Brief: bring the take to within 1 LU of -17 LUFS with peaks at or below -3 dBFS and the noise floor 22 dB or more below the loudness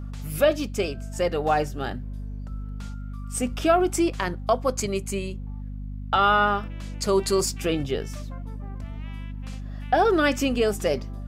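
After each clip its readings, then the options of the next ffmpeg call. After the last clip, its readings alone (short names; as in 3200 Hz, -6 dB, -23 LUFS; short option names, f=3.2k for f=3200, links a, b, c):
hum 50 Hz; harmonics up to 250 Hz; hum level -31 dBFS; loudness -24.5 LUFS; peak -8.5 dBFS; loudness target -17.0 LUFS
-> -af "bandreject=f=50:t=h:w=6,bandreject=f=100:t=h:w=6,bandreject=f=150:t=h:w=6,bandreject=f=200:t=h:w=6,bandreject=f=250:t=h:w=6"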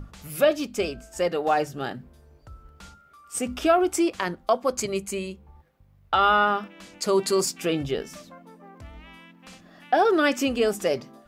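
hum none; loudness -24.5 LUFS; peak -9.0 dBFS; loudness target -17.0 LUFS
-> -af "volume=7.5dB,alimiter=limit=-3dB:level=0:latency=1"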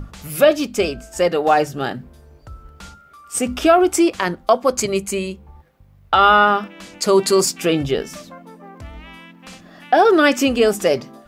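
loudness -17.0 LUFS; peak -3.0 dBFS; noise floor -49 dBFS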